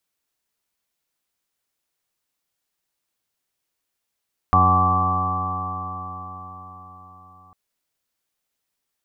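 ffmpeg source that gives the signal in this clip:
ffmpeg -f lavfi -i "aevalsrc='0.119*pow(10,-3*t/4.91)*sin(2*PI*91.14*t)+0.0596*pow(10,-3*t/4.91)*sin(2*PI*182.5*t)+0.0376*pow(10,-3*t/4.91)*sin(2*PI*274.32*t)+0.0168*pow(10,-3*t/4.91)*sin(2*PI*366.81*t)+0.0133*pow(10,-3*t/4.91)*sin(2*PI*460.2*t)+0.0133*pow(10,-3*t/4.91)*sin(2*PI*554.71*t)+0.015*pow(10,-3*t/4.91)*sin(2*PI*650.54*t)+0.1*pow(10,-3*t/4.91)*sin(2*PI*747.91*t)+0.0531*pow(10,-3*t/4.91)*sin(2*PI*847.01*t)+0.0178*pow(10,-3*t/4.91)*sin(2*PI*948.05*t)+0.0596*pow(10,-3*t/4.91)*sin(2*PI*1051.22*t)+0.211*pow(10,-3*t/4.91)*sin(2*PI*1156.69*t)':duration=3:sample_rate=44100" out.wav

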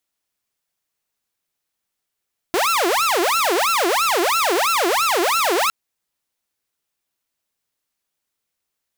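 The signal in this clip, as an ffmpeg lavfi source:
ffmpeg -f lavfi -i "aevalsrc='0.211*(2*mod((848.5*t-511.5/(2*PI*3)*sin(2*PI*3*t)),1)-1)':duration=3.16:sample_rate=44100" out.wav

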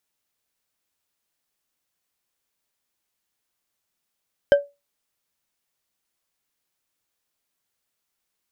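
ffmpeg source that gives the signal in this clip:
ffmpeg -f lavfi -i "aevalsrc='0.447*pow(10,-3*t/0.23)*sin(2*PI*570*t)+0.141*pow(10,-3*t/0.113)*sin(2*PI*1571.5*t)+0.0447*pow(10,-3*t/0.071)*sin(2*PI*3080.3*t)+0.0141*pow(10,-3*t/0.05)*sin(2*PI*5091.8*t)+0.00447*pow(10,-3*t/0.038)*sin(2*PI*7603.8*t)':duration=0.89:sample_rate=44100" out.wav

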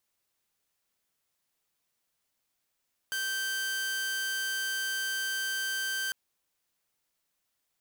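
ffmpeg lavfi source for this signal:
ffmpeg -f lavfi -i "aevalsrc='0.0422*(2*mod(1560*t,1)-1)':duration=3:sample_rate=44100" out.wav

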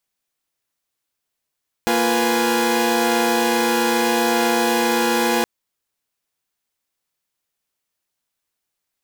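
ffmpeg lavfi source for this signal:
ffmpeg -f lavfi -i "aevalsrc='0.106*((2*mod(233.08*t,1)-1)+(2*mod(349.23*t,1)-1)+(2*mod(493.88*t,1)-1)+(2*mod(830.61*t,1)-1))':duration=3.57:sample_rate=44100" out.wav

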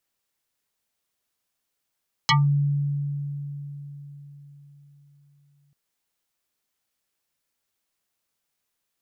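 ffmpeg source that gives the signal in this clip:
ffmpeg -f lavfi -i "aevalsrc='0.188*pow(10,-3*t/4.44)*sin(2*PI*143*t+6.1*pow(10,-3*t/0.18)*sin(2*PI*7.29*143*t))':duration=3.44:sample_rate=44100" out.wav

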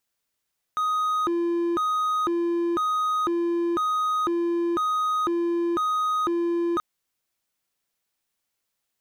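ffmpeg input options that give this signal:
ffmpeg -f lavfi -i "aevalsrc='0.106*(1-4*abs(mod((796*t+454/1*(0.5-abs(mod(1*t,1)-0.5)))+0.25,1)-0.5))':duration=6.03:sample_rate=44100" out.wav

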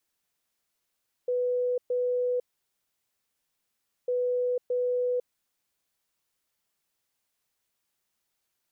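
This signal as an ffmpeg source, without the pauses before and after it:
ffmpeg -f lavfi -i "aevalsrc='0.0631*sin(2*PI*495*t)*clip(min(mod(mod(t,2.8),0.62),0.5-mod(mod(t,2.8),0.62))/0.005,0,1)*lt(mod(t,2.8),1.24)':duration=5.6:sample_rate=44100" out.wav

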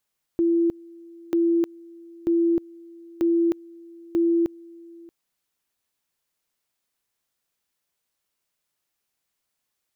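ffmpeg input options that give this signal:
ffmpeg -f lavfi -i "aevalsrc='pow(10,(-17-24.5*gte(mod(t,0.94),0.31))/20)*sin(2*PI*337*t)':duration=4.7:sample_rate=44100" out.wav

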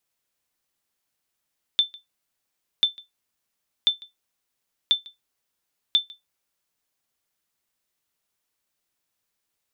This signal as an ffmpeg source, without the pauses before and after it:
ffmpeg -f lavfi -i "aevalsrc='0.316*(sin(2*PI*3540*mod(t,1.04))*exp(-6.91*mod(t,1.04)/0.16)+0.0631*sin(2*PI*3540*max(mod(t,1.04)-0.15,0))*exp(-6.91*max(mod(t,1.04)-0.15,0)/0.16))':duration=5.2:sample_rate=44100" out.wav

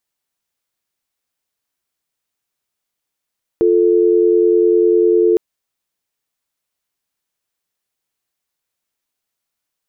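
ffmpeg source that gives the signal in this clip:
ffmpeg -f lavfi -i "aevalsrc='0.251*(sin(2*PI*350*t)+sin(2*PI*440*t))':duration=1.76:sample_rate=44100" out.wav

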